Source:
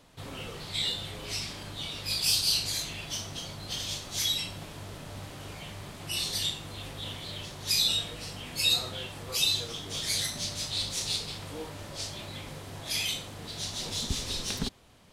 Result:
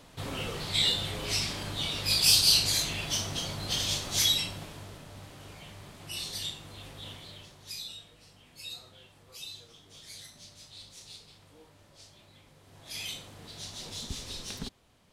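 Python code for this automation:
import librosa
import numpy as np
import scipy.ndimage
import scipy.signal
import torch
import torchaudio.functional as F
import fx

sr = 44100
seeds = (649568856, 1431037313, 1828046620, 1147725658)

y = fx.gain(x, sr, db=fx.line((4.2, 4.5), (5.08, -5.5), (7.12, -5.5), (7.95, -17.0), (12.55, -17.0), (13.06, -6.5)))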